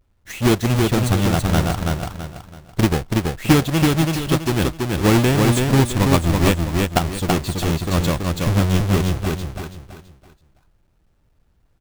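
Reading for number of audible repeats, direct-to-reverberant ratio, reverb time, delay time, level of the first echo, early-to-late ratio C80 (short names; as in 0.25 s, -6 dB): 4, none, none, 0.33 s, -3.0 dB, none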